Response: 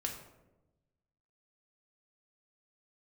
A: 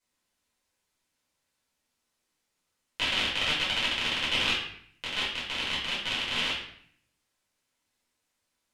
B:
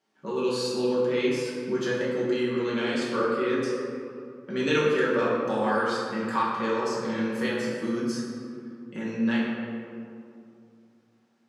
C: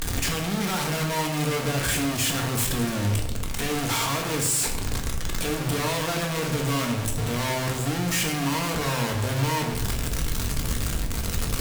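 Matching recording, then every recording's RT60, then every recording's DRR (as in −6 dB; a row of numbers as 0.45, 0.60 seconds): C; 0.60, 2.5, 1.0 seconds; −8.0, −7.5, 1.0 decibels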